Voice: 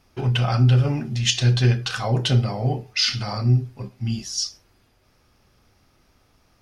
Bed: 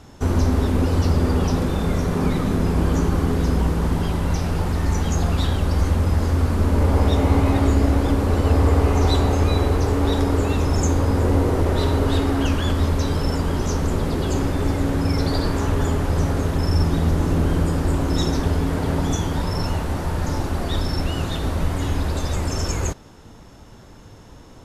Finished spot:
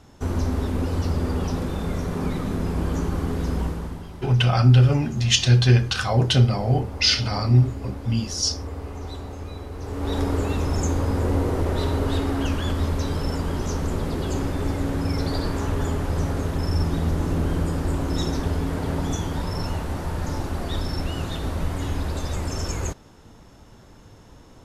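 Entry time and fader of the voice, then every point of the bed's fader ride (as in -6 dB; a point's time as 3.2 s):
4.05 s, +2.0 dB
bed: 3.64 s -5.5 dB
4.09 s -16.5 dB
9.72 s -16.5 dB
10.18 s -4 dB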